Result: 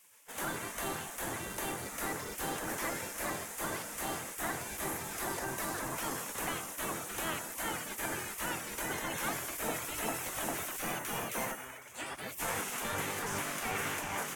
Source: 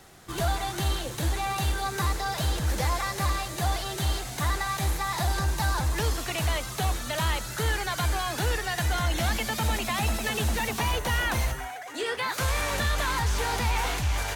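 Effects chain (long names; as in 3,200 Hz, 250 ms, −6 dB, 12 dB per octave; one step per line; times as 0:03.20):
gate on every frequency bin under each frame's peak −15 dB weak
parametric band 4,200 Hz −14 dB 0.91 octaves
0:02.34–0:02.78: log-companded quantiser 6 bits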